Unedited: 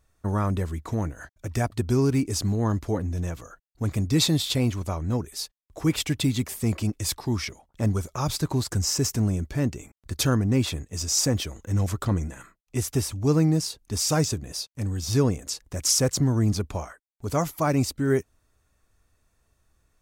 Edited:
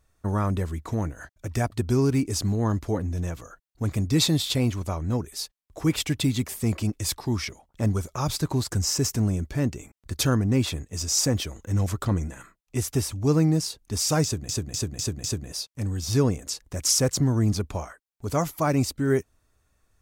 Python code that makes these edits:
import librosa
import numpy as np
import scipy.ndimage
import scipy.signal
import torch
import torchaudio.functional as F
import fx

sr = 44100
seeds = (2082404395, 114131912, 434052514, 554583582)

y = fx.edit(x, sr, fx.repeat(start_s=14.24, length_s=0.25, count=5), tone=tone)